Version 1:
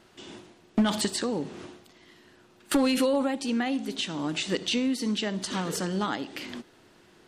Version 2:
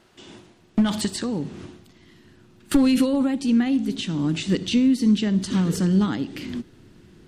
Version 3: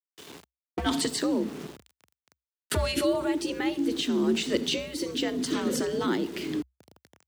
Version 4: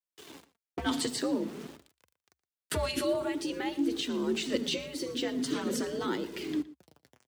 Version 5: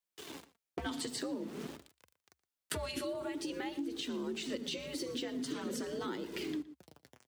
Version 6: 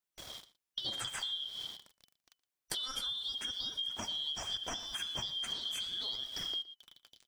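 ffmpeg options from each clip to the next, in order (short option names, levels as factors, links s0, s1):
-af "asubboost=boost=7:cutoff=250"
-af "aeval=exprs='val(0)*gte(abs(val(0)),0.00841)':c=same,afreqshift=63,afftfilt=real='re*lt(hypot(re,im),0.891)':imag='im*lt(hypot(re,im),0.891)':win_size=1024:overlap=0.75"
-filter_complex "[0:a]flanger=delay=1.9:depth=6.3:regen=46:speed=0.48:shape=sinusoidal,asplit=2[s0][s1];[s1]adelay=116.6,volume=0.126,highshelf=f=4000:g=-2.62[s2];[s0][s2]amix=inputs=2:normalize=0"
-af "acompressor=threshold=0.0126:ratio=6,volume=1.26"
-af "afftfilt=real='real(if(lt(b,272),68*(eq(floor(b/68),0)*2+eq(floor(b/68),1)*3+eq(floor(b/68),2)*0+eq(floor(b/68),3)*1)+mod(b,68),b),0)':imag='imag(if(lt(b,272),68*(eq(floor(b/68),0)*2+eq(floor(b/68),1)*3+eq(floor(b/68),2)*0+eq(floor(b/68),3)*1)+mod(b,68),b),0)':win_size=2048:overlap=0.75"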